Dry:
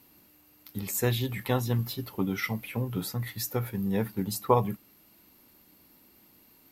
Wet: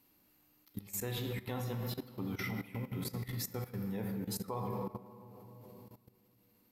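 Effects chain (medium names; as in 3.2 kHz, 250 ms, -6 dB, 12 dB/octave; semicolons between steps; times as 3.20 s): on a send at -3.5 dB: reverberation RT60 3.0 s, pre-delay 4 ms; on the sum: level held to a coarse grid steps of 16 dB; trim -5.5 dB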